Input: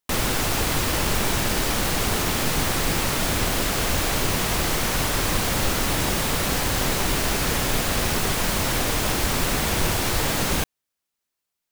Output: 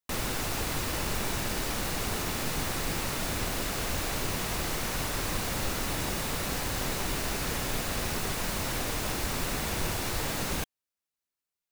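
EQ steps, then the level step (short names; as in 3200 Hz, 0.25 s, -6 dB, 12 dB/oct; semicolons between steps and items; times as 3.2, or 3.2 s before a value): notch 3200 Hz, Q 27; -8.5 dB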